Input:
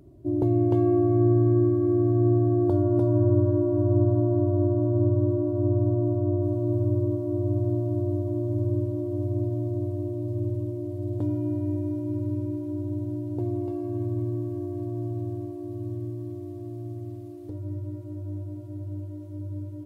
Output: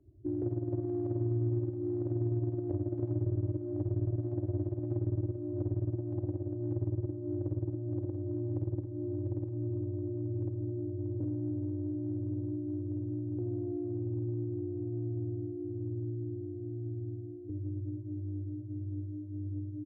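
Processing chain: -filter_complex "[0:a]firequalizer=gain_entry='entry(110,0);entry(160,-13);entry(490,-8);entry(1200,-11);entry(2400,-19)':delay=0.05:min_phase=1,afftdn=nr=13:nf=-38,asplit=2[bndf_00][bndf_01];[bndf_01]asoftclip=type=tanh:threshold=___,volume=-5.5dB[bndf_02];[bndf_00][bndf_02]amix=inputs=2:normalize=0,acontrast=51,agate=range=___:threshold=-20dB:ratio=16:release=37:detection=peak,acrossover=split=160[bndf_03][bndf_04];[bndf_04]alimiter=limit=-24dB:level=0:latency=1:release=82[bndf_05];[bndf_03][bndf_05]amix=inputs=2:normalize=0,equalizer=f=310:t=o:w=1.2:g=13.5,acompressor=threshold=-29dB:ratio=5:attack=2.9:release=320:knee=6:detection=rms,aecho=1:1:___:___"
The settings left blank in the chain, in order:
-33dB, -12dB, 86, 0.178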